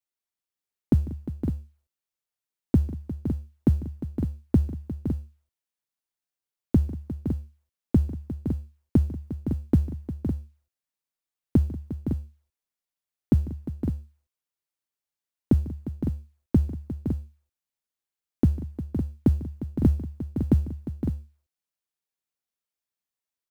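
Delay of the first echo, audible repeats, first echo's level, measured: 148 ms, 5, −18.5 dB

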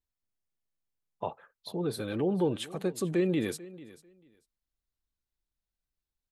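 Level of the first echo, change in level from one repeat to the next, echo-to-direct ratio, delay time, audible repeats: −19.0 dB, −15.0 dB, −19.0 dB, 443 ms, 2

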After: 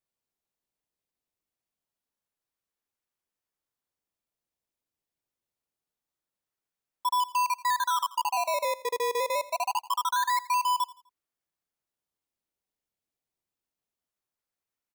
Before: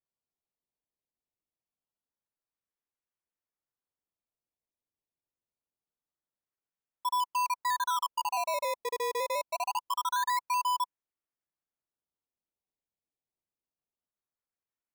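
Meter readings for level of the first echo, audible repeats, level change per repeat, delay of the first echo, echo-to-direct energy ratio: −18.5 dB, 2, −9.5 dB, 84 ms, −18.0 dB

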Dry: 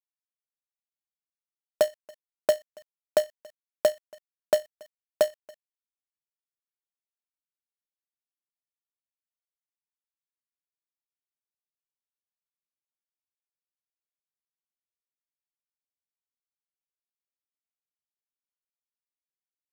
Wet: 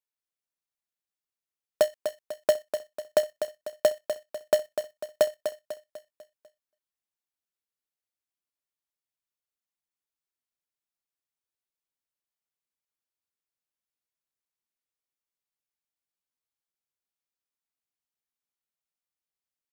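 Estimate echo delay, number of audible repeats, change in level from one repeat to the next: 248 ms, 4, −6.5 dB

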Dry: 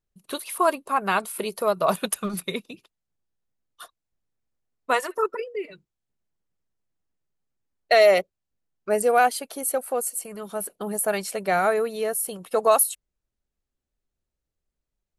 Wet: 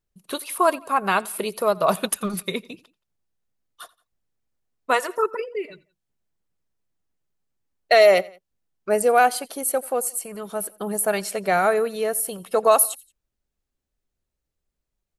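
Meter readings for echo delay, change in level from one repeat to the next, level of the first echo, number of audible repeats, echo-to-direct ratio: 87 ms, −5.5 dB, −23.5 dB, 2, −22.5 dB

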